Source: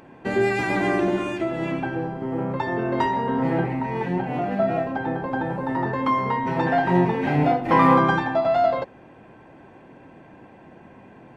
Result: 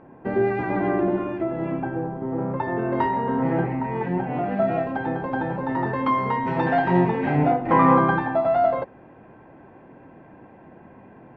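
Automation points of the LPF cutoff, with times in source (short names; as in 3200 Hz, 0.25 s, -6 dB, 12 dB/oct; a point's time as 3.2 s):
2.25 s 1300 Hz
2.92 s 2100 Hz
4.28 s 2100 Hz
4.87 s 3600 Hz
6.91 s 3600 Hz
7.52 s 1900 Hz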